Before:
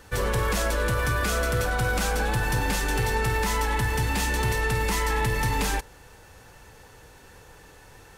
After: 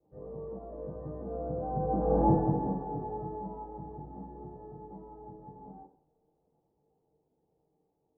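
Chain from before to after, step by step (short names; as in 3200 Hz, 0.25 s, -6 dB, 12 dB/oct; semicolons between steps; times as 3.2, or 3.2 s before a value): Doppler pass-by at 2.24, 10 m/s, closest 1.7 m; steep low-pass 830 Hz 36 dB/oct; reverb RT60 0.45 s, pre-delay 3 ms, DRR -8.5 dB; gain -8.5 dB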